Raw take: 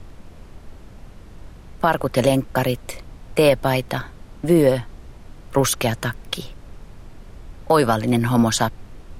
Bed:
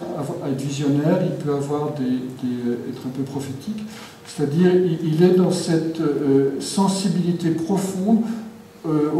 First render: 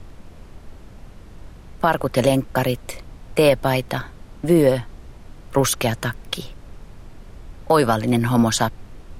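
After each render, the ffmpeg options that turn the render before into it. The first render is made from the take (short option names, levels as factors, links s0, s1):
-af anull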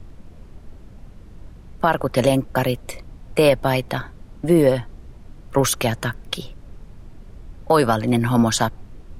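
-af "afftdn=nr=6:nf=-43"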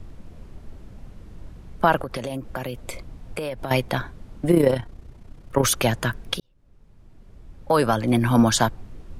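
-filter_complex "[0:a]asettb=1/sr,asplit=3[s0][s1][s2];[s0]atrim=end=2.014[s3];[s1]atrim=start=2.01:end=3.71,asetpts=PTS-STARTPTS,afade=t=in:d=0.004:c=qsin,afade=t=out:st=1.696:d=0.004:c=qsin,acompressor=threshold=0.0562:ratio=12:attack=3.2:release=140:knee=1:detection=peak[s4];[s2]atrim=start=3.706[s5];[s3][s4]acrossfade=d=0.004:c1=hsin:c2=qsin[s6];[s6][s5]acrossfade=d=0.004:c1=qsin:c2=hsin,asettb=1/sr,asplit=3[s7][s8][s9];[s7]atrim=end=4.514[s10];[s8]atrim=start=4.51:end=5.65,asetpts=PTS-STARTPTS,afade=t=in:d=0.004:c=qsin,afade=t=out:st=1.136:d=0.004:c=qsin,tremolo=f=31:d=0.621[s11];[s9]atrim=start=5.646[s12];[s10][s11]acrossfade=d=0.004:c1=hsin:c2=qsin[s13];[s13][s12]acrossfade=d=0.004:c1=qsin:c2=hsin,asplit=2[s14][s15];[s14]atrim=end=6.4,asetpts=PTS-STARTPTS,afade=t=out:st=6.396:d=0.004:c=hsin[s16];[s15]atrim=start=6.4,asetpts=PTS-STARTPTS,afade=t=in:d=1.99[s17];[s16][s17]concat=n=2:v=0:a=1"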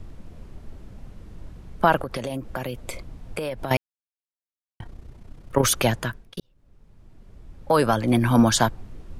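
-filter_complex "[0:a]asplit=4[s0][s1][s2][s3];[s0]atrim=end=3.77,asetpts=PTS-STARTPTS,afade=t=out:st=3.766:d=0.004:c=hsin[s4];[s1]atrim=start=3.77:end=4.8,asetpts=PTS-STARTPTS,volume=0[s5];[s2]atrim=start=4.8:end=6.37,asetpts=PTS-STARTPTS,afade=t=in:d=0.004:c=hsin,afade=t=out:st=1.09:d=0.48[s6];[s3]atrim=start=6.37,asetpts=PTS-STARTPTS,afade=t=in:d=0.004:c=hsin[s7];[s4][s5][s6][s7]concat=n=4:v=0:a=1"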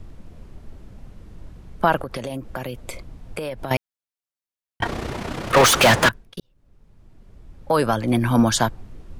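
-filter_complex "[0:a]asettb=1/sr,asplit=3[s0][s1][s2];[s0]atrim=end=4.824[s3];[s1]atrim=start=4.82:end=6.09,asetpts=PTS-STARTPTS,afade=t=in:d=0.004:c=qsin,afade=t=out:st=1.266:d=0.004:c=qsin,asplit=2[s4][s5];[s5]highpass=f=720:p=1,volume=70.8,asoftclip=type=tanh:threshold=0.501[s6];[s4][s6]amix=inputs=2:normalize=0,lowpass=f=4000:p=1,volume=0.501[s7];[s2]atrim=start=6.086[s8];[s3][s7]acrossfade=d=0.004:c1=hsin:c2=qsin[s9];[s9][s8]acrossfade=d=0.004:c1=qsin:c2=hsin"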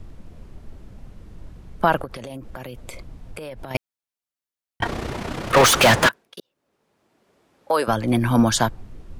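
-filter_complex "[0:a]asettb=1/sr,asplit=3[s0][s1][s2];[s0]atrim=end=2.054[s3];[s1]atrim=start=2.05:end=3.75,asetpts=PTS-STARTPTS,afade=t=in:d=0.004:c=qsin,afade=t=out:st=1.696:d=0.004:c=qsin,acompressor=threshold=0.0282:ratio=4:attack=3.2:release=140:knee=1:detection=peak[s4];[s2]atrim=start=3.746[s5];[s3][s4]acrossfade=d=0.004:c1=hsin:c2=qsin[s6];[s6][s5]acrossfade=d=0.004:c1=qsin:c2=hsin,asettb=1/sr,asplit=3[s7][s8][s9];[s7]atrim=end=6.074[s10];[s8]atrim=start=6.07:end=7.88,asetpts=PTS-STARTPTS,afade=t=in:d=0.004:c=qsin,afade=t=out:st=1.806:d=0.004:c=qsin,highpass=390[s11];[s9]atrim=start=7.876[s12];[s10][s11]acrossfade=d=0.004:c1=hsin:c2=qsin[s13];[s13][s12]acrossfade=d=0.004:c1=qsin:c2=hsin"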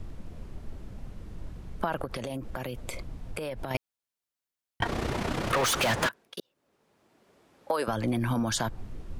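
-af "alimiter=limit=0.237:level=0:latency=1:release=57,acompressor=threshold=0.0562:ratio=5"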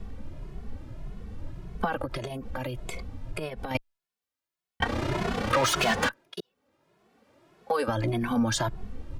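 -filter_complex "[0:a]asplit=2[s0][s1];[s1]adynamicsmooth=sensitivity=7:basefreq=6200,volume=0.75[s2];[s0][s2]amix=inputs=2:normalize=0,asplit=2[s3][s4];[s4]adelay=2.3,afreqshift=1.7[s5];[s3][s5]amix=inputs=2:normalize=1"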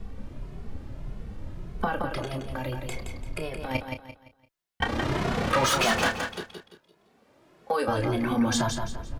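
-filter_complex "[0:a]asplit=2[s0][s1];[s1]adelay=30,volume=0.376[s2];[s0][s2]amix=inputs=2:normalize=0,aecho=1:1:171|342|513|684:0.501|0.17|0.0579|0.0197"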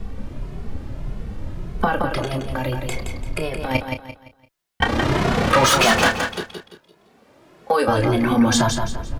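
-af "volume=2.51"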